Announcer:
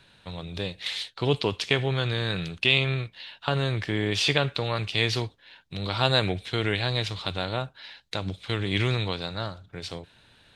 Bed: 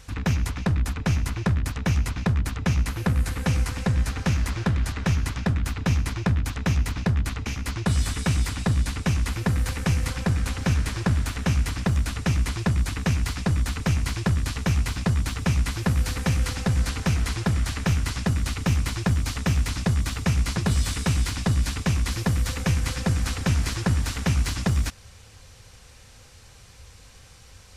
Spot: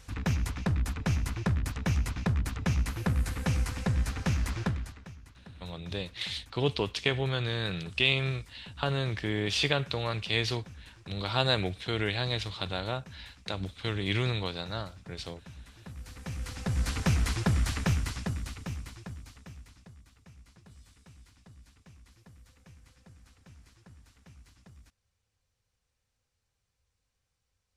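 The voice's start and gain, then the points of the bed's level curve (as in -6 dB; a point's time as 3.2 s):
5.35 s, -4.0 dB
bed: 4.65 s -5.5 dB
5.14 s -26 dB
15.71 s -26 dB
16.97 s -3 dB
17.78 s -3 dB
20.07 s -32 dB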